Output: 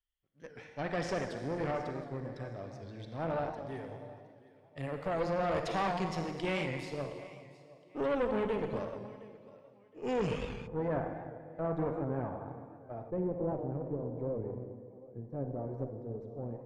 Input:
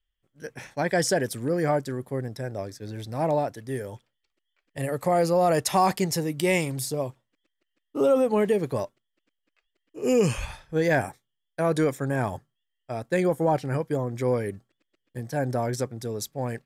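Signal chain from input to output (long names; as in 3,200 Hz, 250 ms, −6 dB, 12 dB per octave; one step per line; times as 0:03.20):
notch filter 1,600 Hz, Q 22
feedback echo with a high-pass in the loop 716 ms, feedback 29%, high-pass 150 Hz, level −19 dB
convolution reverb RT60 1.9 s, pre-delay 37 ms, DRR 4 dB
tube saturation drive 20 dB, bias 0.75
Chebyshev low-pass filter 3,300 Hz, order 2, from 0:10.66 960 Hz, from 0:13.09 500 Hz
wow of a warped record 78 rpm, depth 100 cents
level −5.5 dB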